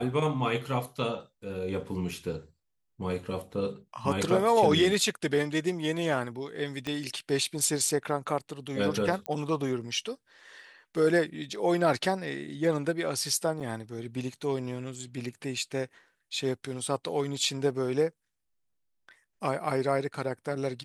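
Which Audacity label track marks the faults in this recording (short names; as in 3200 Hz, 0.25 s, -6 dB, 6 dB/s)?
2.110000	2.110000	gap 4.2 ms
6.870000	6.870000	pop -20 dBFS
9.260000	9.260000	pop -20 dBFS
13.600000	13.600000	gap 4.4 ms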